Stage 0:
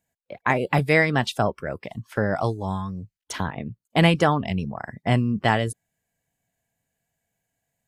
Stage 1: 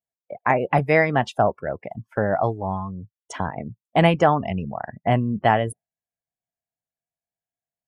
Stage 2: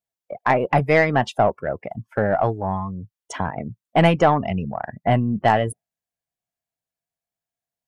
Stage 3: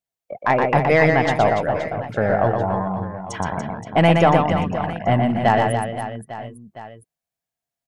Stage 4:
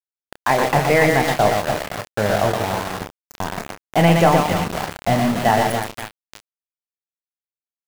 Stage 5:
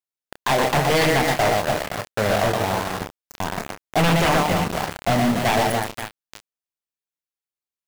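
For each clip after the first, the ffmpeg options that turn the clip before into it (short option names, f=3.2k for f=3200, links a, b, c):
-af "equalizer=f=710:t=o:w=0.84:g=7,afftdn=nr=20:nf=-38,equalizer=f=4.1k:t=o:w=0.54:g=-9,volume=-1dB"
-af "aeval=exprs='0.708*(cos(1*acos(clip(val(0)/0.708,-1,1)))-cos(1*PI/2))+0.0447*(cos(5*acos(clip(val(0)/0.708,-1,1)))-cos(5*PI/2))+0.0126*(cos(8*acos(clip(val(0)/0.708,-1,1)))-cos(8*PI/2))':c=same"
-af "aecho=1:1:120|288|523.2|852.5|1313:0.631|0.398|0.251|0.158|0.1"
-filter_complex "[0:a]aeval=exprs='val(0)*gte(abs(val(0)),0.0944)':c=same,asplit=2[a][b];[b]adelay=29,volume=-9.5dB[c];[a][c]amix=inputs=2:normalize=0"
-af "aeval=exprs='0.237*(abs(mod(val(0)/0.237+3,4)-2)-1)':c=same"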